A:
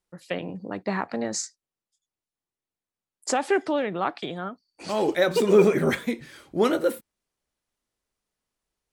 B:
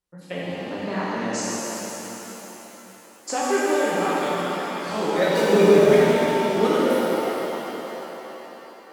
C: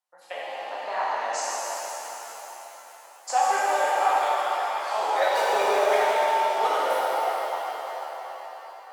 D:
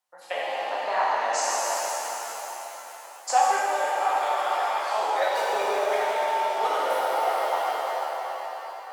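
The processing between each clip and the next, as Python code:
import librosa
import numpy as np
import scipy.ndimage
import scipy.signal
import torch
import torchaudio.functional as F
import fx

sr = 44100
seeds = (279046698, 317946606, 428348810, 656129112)

y1 = fx.rev_shimmer(x, sr, seeds[0], rt60_s=3.9, semitones=7, shimmer_db=-8, drr_db=-7.5)
y1 = F.gain(torch.from_numpy(y1), -5.0).numpy()
y2 = fx.ladder_highpass(y1, sr, hz=660.0, resonance_pct=55)
y2 = F.gain(torch.from_numpy(y2), 7.5).numpy()
y3 = fx.rider(y2, sr, range_db=5, speed_s=0.5)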